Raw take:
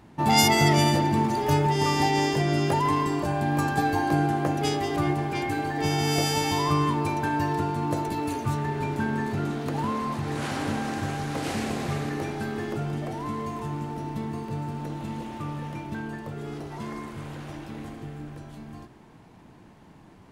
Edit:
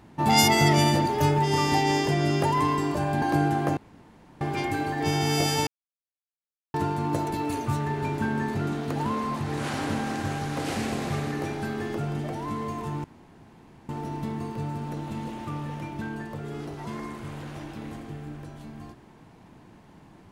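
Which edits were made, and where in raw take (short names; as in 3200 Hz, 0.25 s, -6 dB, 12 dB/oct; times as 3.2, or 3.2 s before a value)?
1.06–1.34 cut
3.5–4 cut
4.55–5.19 room tone
6.45–7.52 mute
13.82 insert room tone 0.85 s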